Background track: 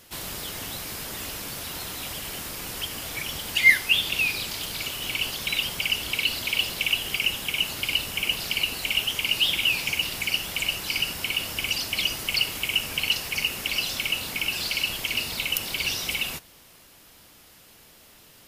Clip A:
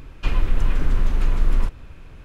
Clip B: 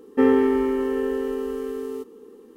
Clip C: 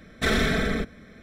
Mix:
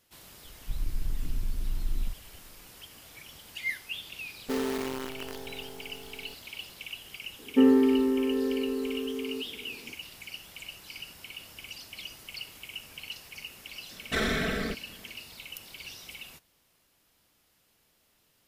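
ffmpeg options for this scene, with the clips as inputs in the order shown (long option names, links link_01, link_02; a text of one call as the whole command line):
ffmpeg -i bed.wav -i cue0.wav -i cue1.wav -i cue2.wav -filter_complex "[2:a]asplit=2[link_01][link_02];[0:a]volume=-16.5dB[link_03];[1:a]afwtdn=0.0794[link_04];[link_01]acrusher=bits=4:dc=4:mix=0:aa=0.000001[link_05];[link_02]equalizer=frequency=230:width_type=o:width=1.2:gain=10.5[link_06];[3:a]lowshelf=frequency=140:gain=-5.5[link_07];[link_04]atrim=end=2.24,asetpts=PTS-STARTPTS,volume=-12dB,afade=type=in:duration=0.004:curve=hsin,afade=type=out:start_time=2.236:duration=0.004:curve=hsin,adelay=440[link_08];[link_05]atrim=end=2.56,asetpts=PTS-STARTPTS,volume=-14dB,afade=type=in:duration=0.004:curve=hsin,afade=type=out:start_time=2.556:duration=0.004:curve=hsin,adelay=4310[link_09];[link_06]atrim=end=2.56,asetpts=PTS-STARTPTS,volume=-9.5dB,afade=type=in:duration=0.004:curve=hsin,afade=type=out:start_time=2.556:duration=0.004:curve=hsin,adelay=7390[link_10];[link_07]atrim=end=1.22,asetpts=PTS-STARTPTS,volume=-4.5dB,afade=type=in:duration=0.004:curve=hsin,afade=type=out:start_time=1.216:duration=0.004:curve=hsin,adelay=13900[link_11];[link_03][link_08][link_09][link_10][link_11]amix=inputs=5:normalize=0" out.wav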